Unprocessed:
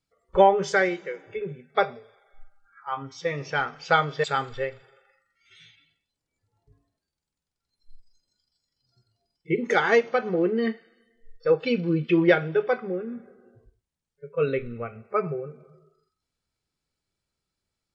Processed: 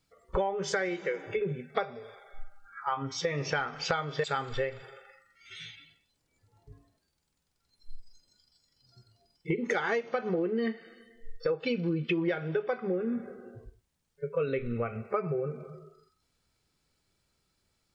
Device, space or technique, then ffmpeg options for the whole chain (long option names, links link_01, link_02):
serial compression, peaks first: -af "acompressor=threshold=-31dB:ratio=6,acompressor=threshold=-41dB:ratio=1.5,volume=8dB"